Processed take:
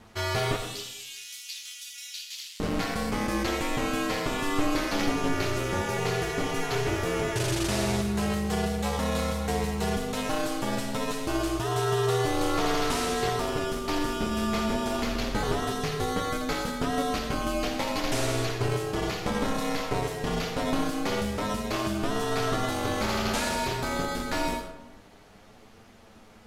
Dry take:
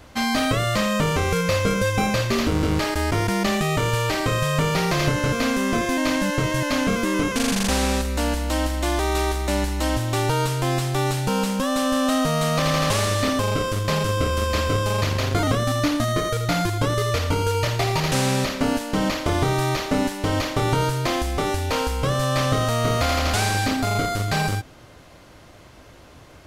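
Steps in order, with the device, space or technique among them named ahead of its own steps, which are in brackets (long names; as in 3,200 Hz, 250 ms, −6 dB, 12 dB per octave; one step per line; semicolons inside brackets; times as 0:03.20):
0:00.56–0:02.60: inverse Chebyshev high-pass filter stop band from 530 Hz, stop band 80 dB
alien voice (ring modulation 140 Hz; flanger 0.27 Hz, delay 8.8 ms, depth 2.6 ms, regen +39%)
comb and all-pass reverb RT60 0.9 s, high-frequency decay 0.55×, pre-delay 45 ms, DRR 6.5 dB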